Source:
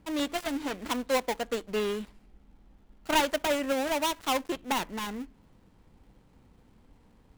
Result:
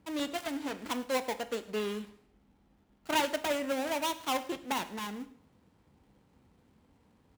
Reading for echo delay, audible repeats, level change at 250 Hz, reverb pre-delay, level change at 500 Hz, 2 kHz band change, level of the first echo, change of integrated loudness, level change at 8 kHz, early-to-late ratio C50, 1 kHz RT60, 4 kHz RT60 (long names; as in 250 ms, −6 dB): 107 ms, 2, −3.5 dB, 6 ms, −4.0 dB, −3.5 dB, −21.0 dB, −3.5 dB, −3.5 dB, 15.0 dB, 0.60 s, 0.55 s